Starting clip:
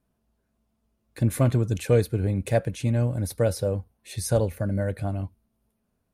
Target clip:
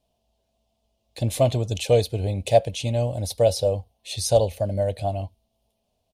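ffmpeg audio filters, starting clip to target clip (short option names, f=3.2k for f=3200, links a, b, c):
-af "firequalizer=gain_entry='entry(100,0);entry(150,-5);entry(330,-4);entry(670,11);entry(1400,-13);entry(3000,12);entry(11000,0)':delay=0.05:min_phase=1"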